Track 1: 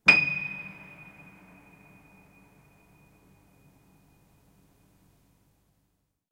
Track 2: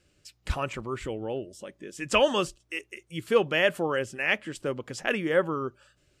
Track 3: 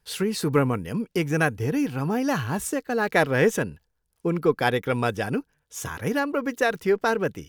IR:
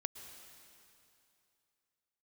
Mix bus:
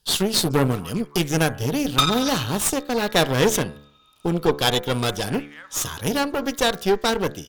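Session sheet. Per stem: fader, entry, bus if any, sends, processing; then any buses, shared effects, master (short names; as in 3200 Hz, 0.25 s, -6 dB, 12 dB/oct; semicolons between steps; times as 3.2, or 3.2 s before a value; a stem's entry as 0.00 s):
+1.5 dB, 1.90 s, no send, FFT band-pass 1100–6100 Hz; upward compressor, threshold -49 dBFS; ring modulator 1200 Hz
-6.5 dB, 0.25 s, muted 3.76–4.83, no send, limiter -19.5 dBFS, peak gain reduction 11 dB; inverse Chebyshev high-pass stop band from 270 Hz, stop band 60 dB
+1.5 dB, 0.00 s, no send, resonant high shelf 2700 Hz +7 dB, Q 3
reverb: off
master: de-hum 72.22 Hz, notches 33; added harmonics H 8 -18 dB, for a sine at -3.5 dBFS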